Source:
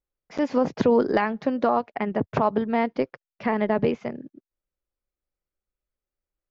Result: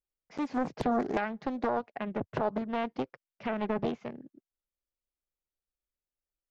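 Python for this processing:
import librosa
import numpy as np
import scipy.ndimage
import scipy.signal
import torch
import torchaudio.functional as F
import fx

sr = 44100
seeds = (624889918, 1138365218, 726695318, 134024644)

y = fx.quant_float(x, sr, bits=8)
y = fx.doppler_dist(y, sr, depth_ms=0.98)
y = y * 10.0 ** (-8.5 / 20.0)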